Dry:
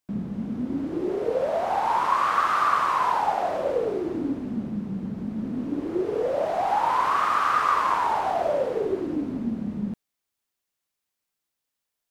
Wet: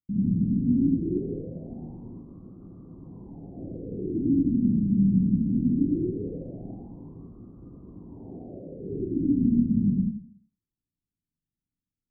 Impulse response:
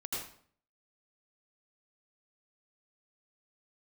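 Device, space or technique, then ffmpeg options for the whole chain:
club heard from the street: -filter_complex "[0:a]asettb=1/sr,asplit=3[link_01][link_02][link_03];[link_01]atrim=end=8.134[link_04];[link_02]atrim=start=8.13:end=8.64,asetpts=PTS-STARTPTS,afade=type=in:duration=0.004:curve=qsin,afade=type=out:start_time=0.506:duration=0.004:curve=qsin,equalizer=frequency=500:width_type=o:width=2.4:gain=13[link_05];[link_03]atrim=start=8.636[link_06];[link_04][link_05]acrossfade=duration=0.004:curve1=hsin:curve2=qsin[link_07];[link_07][link_06]acrossfade=duration=0.004:curve1=qsin:curve2=hsin,alimiter=limit=-19dB:level=0:latency=1:release=269,lowpass=frequency=240:width=0.5412,lowpass=frequency=240:width=1.3066[link_08];[1:a]atrim=start_sample=2205[link_09];[link_08][link_09]afir=irnorm=-1:irlink=0,volume=7.5dB"

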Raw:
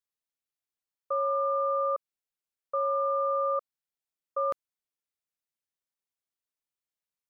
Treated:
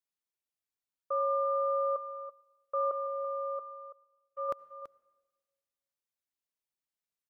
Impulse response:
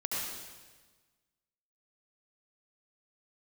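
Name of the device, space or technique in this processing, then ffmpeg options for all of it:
keyed gated reverb: -filter_complex "[0:a]asettb=1/sr,asplit=3[link_01][link_02][link_03];[link_01]atrim=end=2.914[link_04];[link_02]atrim=start=2.91:end=4.49,asetpts=PTS-STARTPTS,afade=type=in:duration=0.004:curve=qsin,afade=type=out:start_time=1.576:duration=0.004:curve=qsin,agate=range=-33dB:threshold=-23dB:ratio=3:detection=peak[link_05];[link_03]atrim=start=4.486[link_06];[link_04][link_05]acrossfade=duration=0.004:curve1=hsin:curve2=qsin[link_07];[link_07][link_06]acrossfade=duration=0.004:curve1=qsin:curve2=hsin,asplit=3[link_08][link_09][link_10];[1:a]atrim=start_sample=2205[link_11];[link_09][link_11]afir=irnorm=-1:irlink=0[link_12];[link_10]apad=whole_len=321710[link_13];[link_12][link_13]sidechaingate=range=-16dB:threshold=-27dB:ratio=16:detection=peak,volume=-9.5dB[link_14];[link_08][link_14]amix=inputs=2:normalize=0,aecho=1:1:332:0.237,volume=-3.5dB"

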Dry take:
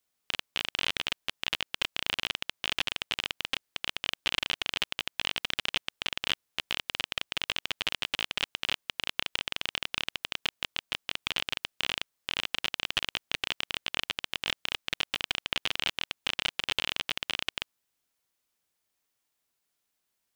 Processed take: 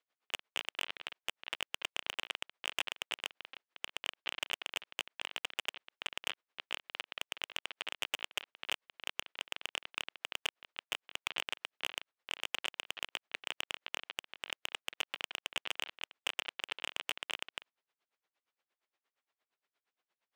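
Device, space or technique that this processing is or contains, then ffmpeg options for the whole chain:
helicopter radio: -af "highpass=380,lowpass=2800,aeval=exprs='val(0)*pow(10,-25*(0.5-0.5*cos(2*PI*8.6*n/s))/20)':channel_layout=same,asoftclip=type=hard:threshold=-26.5dB,volume=5.5dB"

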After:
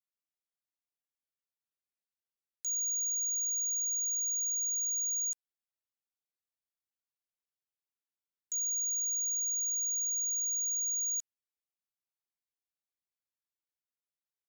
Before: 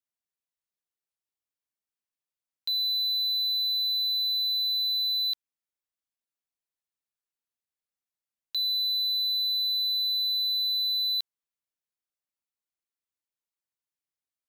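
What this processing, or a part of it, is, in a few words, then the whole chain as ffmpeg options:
chipmunk voice: -filter_complex "[0:a]asetrate=74167,aresample=44100,atempo=0.594604,asettb=1/sr,asplit=3[link_01][link_02][link_03];[link_01]atrim=end=3.094[link_04];[link_02]atrim=start=3.09:end=4.63,asetpts=PTS-STARTPTS,afade=type=in:duration=0.004:curve=qsin,afade=type=out:start_time=1.536:duration=0.004:curve=qsin,equalizer=frequency=150:width_type=o:width=0.7:gain=-9.5[link_05];[link_03]atrim=start=4.626[link_06];[link_04][link_05]acrossfade=duration=0.004:curve1=hsin:curve2=qsin[link_07];[link_07][link_06]acrossfade=duration=0.004:curve1=qsin:curve2=hsin,volume=-5.5dB"

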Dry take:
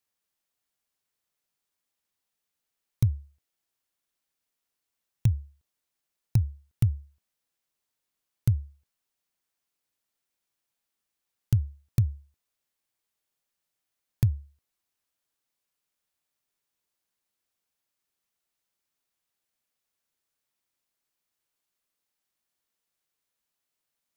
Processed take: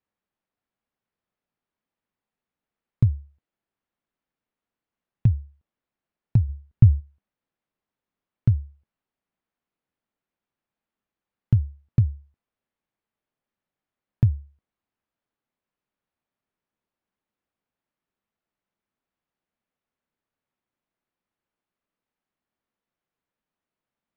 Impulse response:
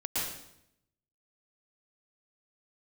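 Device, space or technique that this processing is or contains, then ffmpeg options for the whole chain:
phone in a pocket: -filter_complex "[0:a]asplit=3[link_01][link_02][link_03];[link_01]afade=type=out:start_time=6.48:duration=0.02[link_04];[link_02]lowshelf=frequency=120:gain=10.5,afade=type=in:start_time=6.48:duration=0.02,afade=type=out:start_time=6.99:duration=0.02[link_05];[link_03]afade=type=in:start_time=6.99:duration=0.02[link_06];[link_04][link_05][link_06]amix=inputs=3:normalize=0,lowpass=3100,equalizer=frequency=210:width_type=o:width=0.73:gain=5,highshelf=frequency=2100:gain=-10,volume=3.5dB"

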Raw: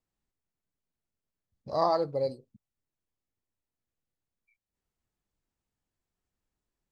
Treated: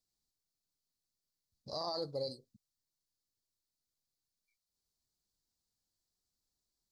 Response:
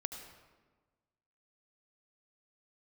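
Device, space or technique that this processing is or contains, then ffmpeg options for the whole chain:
over-bright horn tweeter: -af "highshelf=frequency=3300:width_type=q:width=3:gain=10,alimiter=limit=-22dB:level=0:latency=1:release=10,volume=-7dB"

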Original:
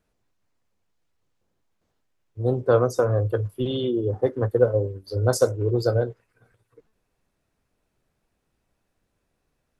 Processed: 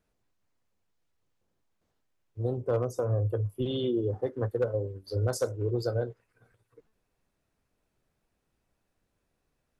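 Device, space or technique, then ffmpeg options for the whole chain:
clipper into limiter: -filter_complex "[0:a]asettb=1/sr,asplit=3[link_01][link_02][link_03];[link_01]atrim=end=2.574[link_04];[link_02]atrim=start=2.57:end=3.62,asetpts=PTS-STARTPTS,afade=type=in:duration=0.004:curve=qsin,afade=type=out:start_time=1.046:duration=0.004:curve=qsin,equalizer=frequency=100:width_type=o:width=0.67:gain=4,equalizer=frequency=1600:width_type=o:width=0.67:gain=-8,equalizer=frequency=4000:width_type=o:width=0.67:gain=-10[link_05];[link_03]atrim=start=3.616[link_06];[link_04][link_05]acrossfade=duration=0.004:curve1=hsin:curve2=qsin[link_07];[link_07][link_06]acrossfade=duration=0.004:curve1=qsin:curve2=hsin,asoftclip=type=hard:threshold=-10dB,alimiter=limit=-16dB:level=0:latency=1:release=324,volume=-3.5dB"

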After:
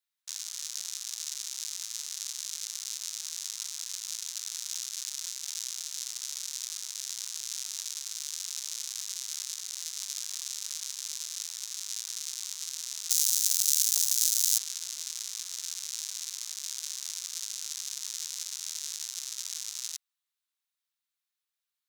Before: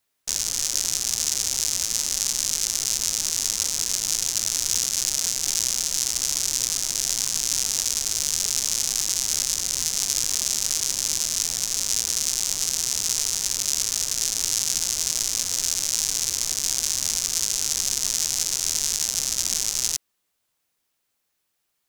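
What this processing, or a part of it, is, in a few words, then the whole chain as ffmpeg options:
headphones lying on a table: -filter_complex "[0:a]highpass=frequency=1000:width=0.5412,highpass=frequency=1000:width=1.3066,equalizer=frequency=3800:width_type=o:width=0.38:gain=5.5,asettb=1/sr,asplit=3[link_01][link_02][link_03];[link_01]atrim=end=13.104[link_04];[link_02]atrim=start=13.1:end=14.58,asetpts=PTS-STARTPTS,afade=type=in:duration=0.004:curve=qsin,afade=type=out:start_time=1.476:duration=0.004:curve=qsin,aemphasis=mode=production:type=riaa[link_05];[link_03]atrim=start=14.576[link_06];[link_04][link_05]acrossfade=duration=0.004:curve1=hsin:curve2=qsin[link_07];[link_07][link_06]acrossfade=duration=0.004:curve1=qsin:curve2=hsin,volume=-13.5dB"

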